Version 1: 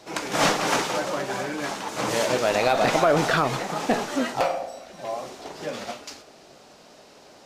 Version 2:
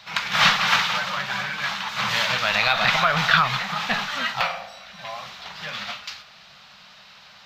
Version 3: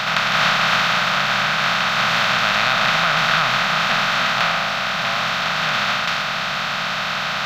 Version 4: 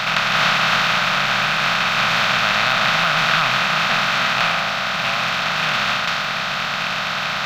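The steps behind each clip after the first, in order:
FFT filter 200 Hz 0 dB, 300 Hz -25 dB, 1.2 kHz +6 dB, 3.8 kHz +10 dB, 9.6 kHz -14 dB, 14 kHz +1 dB
spectral levelling over time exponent 0.2; trim -6 dB
rattle on loud lows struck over -33 dBFS, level -13 dBFS

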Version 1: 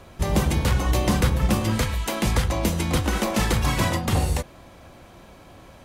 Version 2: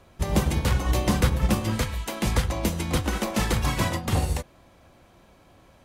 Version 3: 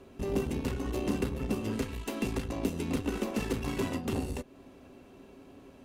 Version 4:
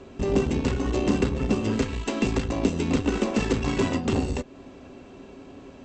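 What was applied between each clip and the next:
upward expansion 1.5:1, over -32 dBFS
compression 2:1, threshold -35 dBFS, peak gain reduction 11 dB; valve stage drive 28 dB, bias 0.55; small resonant body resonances 270/390/2700 Hz, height 17 dB, ringing for 70 ms; trim -1.5 dB
brick-wall FIR low-pass 8.2 kHz; trim +8 dB

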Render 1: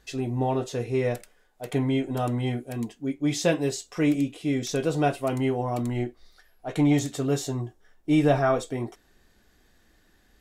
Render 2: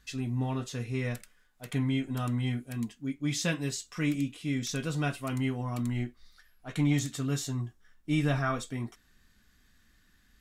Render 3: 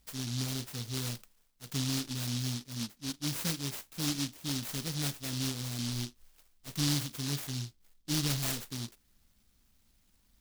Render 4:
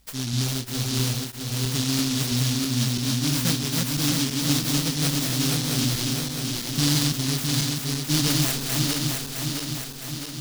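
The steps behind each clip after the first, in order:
high-order bell 530 Hz -11 dB; trim -2 dB
delay time shaken by noise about 4.4 kHz, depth 0.42 ms; trim -4 dB
backward echo that repeats 331 ms, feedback 77%, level -2 dB; trim +8 dB

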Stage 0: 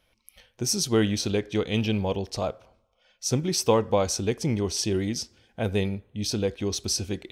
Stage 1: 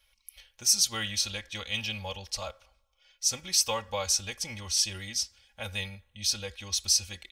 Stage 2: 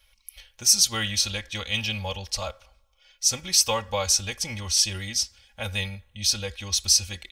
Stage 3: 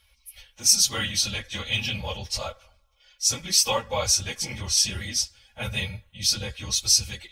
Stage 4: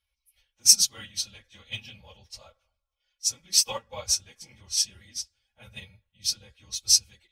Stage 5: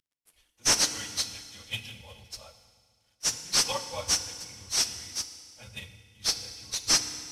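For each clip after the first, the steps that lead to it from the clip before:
amplifier tone stack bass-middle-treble 10-0-10; comb 3.6 ms, depth 82%; trim +2 dB
bass shelf 170 Hz +4 dB; trim +5 dB
phase randomisation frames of 50 ms
upward expansion 2.5:1, over -30 dBFS; trim +4 dB
CVSD coder 64 kbps; FDN reverb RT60 1.9 s, low-frequency decay 1.25×, high-frequency decay 1×, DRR 9 dB; trim +1 dB

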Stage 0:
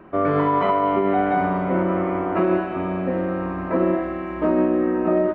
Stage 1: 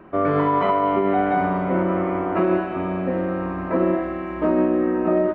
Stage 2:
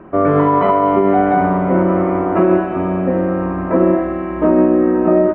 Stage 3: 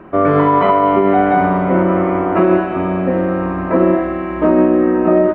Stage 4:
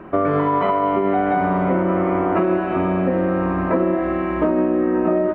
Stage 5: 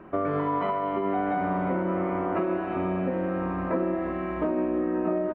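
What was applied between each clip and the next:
no audible change
low-pass 1.3 kHz 6 dB/octave; trim +7.5 dB
treble shelf 2.1 kHz +9 dB
compression, threshold -15 dBFS, peak gain reduction 7.5 dB
delay 351 ms -13 dB; trim -8.5 dB

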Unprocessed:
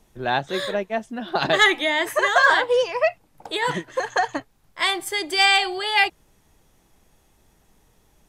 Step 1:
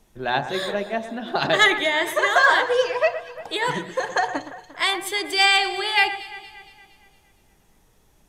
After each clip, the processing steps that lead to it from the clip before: de-hum 61.12 Hz, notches 20; on a send: echo whose repeats swap between lows and highs 116 ms, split 2.5 kHz, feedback 69%, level -12 dB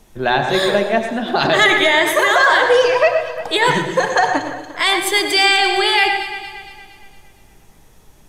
peak limiter -13.5 dBFS, peak gain reduction 7.5 dB; on a send at -8 dB: reverberation RT60 0.55 s, pre-delay 87 ms; on the sum: trim +9 dB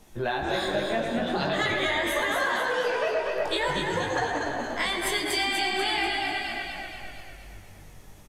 compression 6:1, threshold -23 dBFS, peak gain reduction 13.5 dB; chorus 0.46 Hz, delay 17 ms, depth 4.9 ms; on a send: frequency-shifting echo 244 ms, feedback 48%, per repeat -49 Hz, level -4.5 dB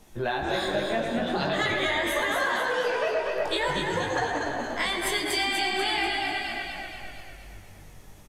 no audible change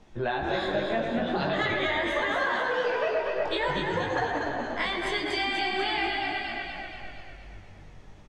distance through air 140 m

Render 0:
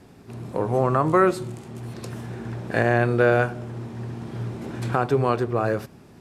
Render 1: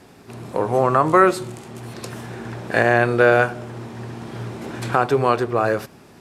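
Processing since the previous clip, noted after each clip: bass shelf 320 Hz -9 dB; trim +6.5 dB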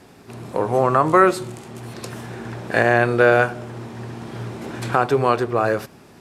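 no audible change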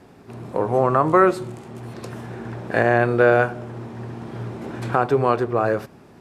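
treble shelf 2.2 kHz -9 dB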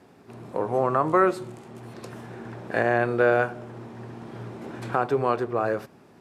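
high-pass 130 Hz 6 dB/octave; trim -4.5 dB

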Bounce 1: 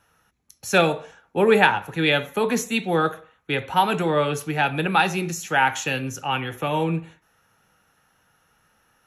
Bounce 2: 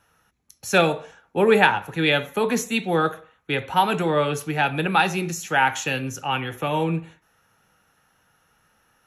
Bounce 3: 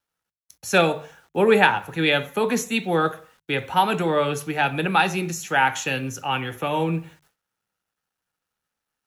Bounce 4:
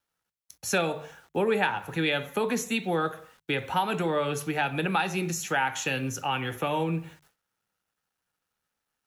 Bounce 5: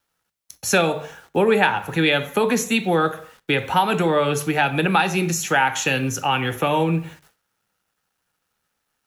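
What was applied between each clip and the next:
no audible change
word length cut 10-bit, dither none; hum notches 50/100/150 Hz; gate with hold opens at -52 dBFS
compression 2.5:1, threshold -26 dBFS, peak gain reduction 10 dB
Schroeder reverb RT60 0.33 s, combs from 28 ms, DRR 19.5 dB; trim +8 dB

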